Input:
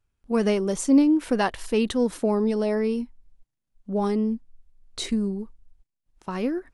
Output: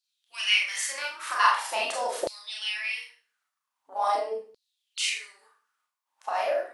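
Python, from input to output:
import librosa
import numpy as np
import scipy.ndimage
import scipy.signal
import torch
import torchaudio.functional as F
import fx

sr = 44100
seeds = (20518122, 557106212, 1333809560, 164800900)

y = fx.spec_gate(x, sr, threshold_db=-10, keep='weak')
y = fx.rev_schroeder(y, sr, rt60_s=0.39, comb_ms=26, drr_db=-2.5)
y = fx.filter_lfo_highpass(y, sr, shape='saw_down', hz=0.44, low_hz=460.0, high_hz=4400.0, q=6.5)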